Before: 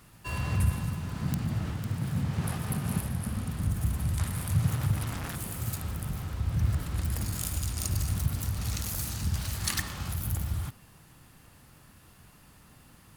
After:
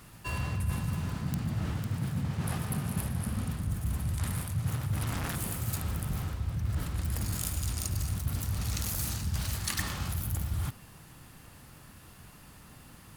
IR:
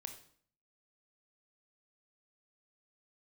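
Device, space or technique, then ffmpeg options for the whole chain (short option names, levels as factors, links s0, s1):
compression on the reversed sound: -af "areverse,acompressor=threshold=0.0251:ratio=5,areverse,volume=1.5"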